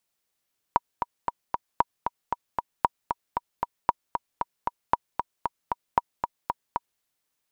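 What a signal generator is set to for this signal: metronome 230 bpm, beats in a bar 4, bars 6, 956 Hz, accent 6.5 dB -5.5 dBFS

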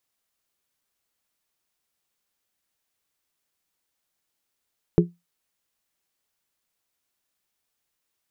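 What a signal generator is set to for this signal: glass hit bell, lowest mode 173 Hz, modes 3, decay 0.21 s, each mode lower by 1.5 dB, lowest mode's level -11 dB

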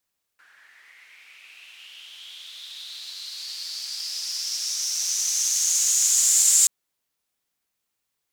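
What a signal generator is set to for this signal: swept filtered noise white, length 6.28 s bandpass, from 1500 Hz, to 7400 Hz, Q 6.1, linear, gain ramp +33 dB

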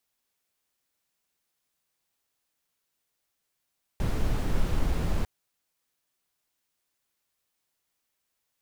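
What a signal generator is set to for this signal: noise brown, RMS -24.5 dBFS 1.25 s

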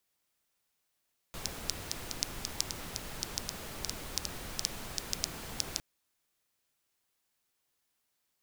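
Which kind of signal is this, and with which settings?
rain from filtered ticks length 4.46 s, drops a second 5.2, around 5300 Hz, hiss -0.5 dB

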